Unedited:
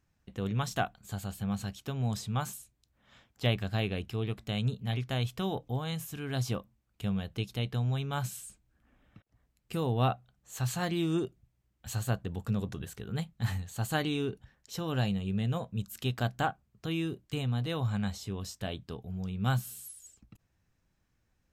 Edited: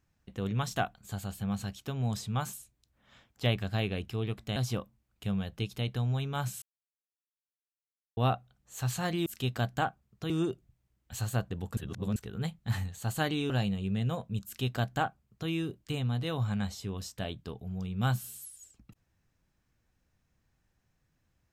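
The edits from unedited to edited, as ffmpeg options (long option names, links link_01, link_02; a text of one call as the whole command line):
ffmpeg -i in.wav -filter_complex "[0:a]asplit=9[link_01][link_02][link_03][link_04][link_05][link_06][link_07][link_08][link_09];[link_01]atrim=end=4.562[link_10];[link_02]atrim=start=6.338:end=8.4,asetpts=PTS-STARTPTS,afade=type=out:start_time=2.058:duration=0.004:curve=hsin[link_11];[link_03]atrim=start=8.4:end=9.95,asetpts=PTS-STARTPTS,volume=0[link_12];[link_04]atrim=start=9.95:end=11.042,asetpts=PTS-STARTPTS,afade=type=in:duration=0.004:curve=hsin[link_13];[link_05]atrim=start=15.878:end=16.922[link_14];[link_06]atrim=start=11.038:end=12.512[link_15];[link_07]atrim=start=12.508:end=12.902,asetpts=PTS-STARTPTS,areverse[link_16];[link_08]atrim=start=12.898:end=14.242[link_17];[link_09]atrim=start=14.928[link_18];[link_11][link_12][link_13]concat=n=3:v=0:a=1[link_19];[link_10][link_19]acrossfade=duration=0.004:curve1=hsin:curve2=hsin[link_20];[link_20][link_14]acrossfade=duration=0.004:curve1=hsin:curve2=hsin[link_21];[link_21][link_15]acrossfade=duration=0.004:curve1=hsin:curve2=hsin[link_22];[link_22][link_16]acrossfade=duration=0.004:curve1=hsin:curve2=hsin[link_23];[link_23][link_17]acrossfade=duration=0.004:curve1=hsin:curve2=hsin[link_24];[link_24][link_18]acrossfade=duration=0.004:curve1=hsin:curve2=hsin" out.wav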